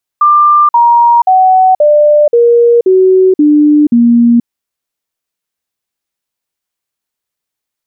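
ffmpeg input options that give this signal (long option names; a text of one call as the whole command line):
ffmpeg -f lavfi -i "aevalsrc='0.708*clip(min(mod(t,0.53),0.48-mod(t,0.53))/0.005,0,1)*sin(2*PI*1190*pow(2,-floor(t/0.53)/3)*mod(t,0.53))':duration=4.24:sample_rate=44100" out.wav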